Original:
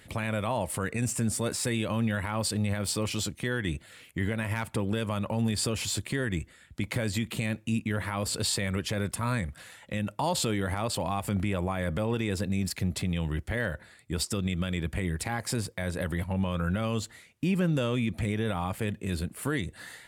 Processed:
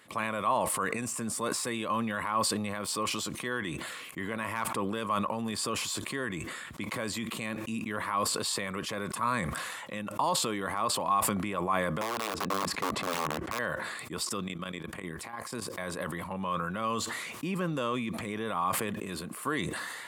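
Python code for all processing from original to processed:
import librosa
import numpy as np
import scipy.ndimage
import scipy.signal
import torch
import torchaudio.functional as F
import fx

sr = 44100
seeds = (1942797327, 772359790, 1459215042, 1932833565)

y = fx.chain(x, sr, fx.lowpass(hz=1600.0, slope=6),
    fx.overflow_wrap(gain_db=24.0), at=(12.01, 13.59))
y = fx.chain(y, sr, fx.highpass(hz=41.0, slope=6),
    fx.level_steps(step_db=15), at=(14.48, 15.7))
y = scipy.signal.sosfilt(scipy.signal.butter(2, 220.0, 'highpass', fs=sr, output='sos'), y)
y = fx.peak_eq(y, sr, hz=1100.0, db=14.5, octaves=0.34)
y = fx.sustainer(y, sr, db_per_s=27.0)
y = F.gain(torch.from_numpy(y), -3.5).numpy()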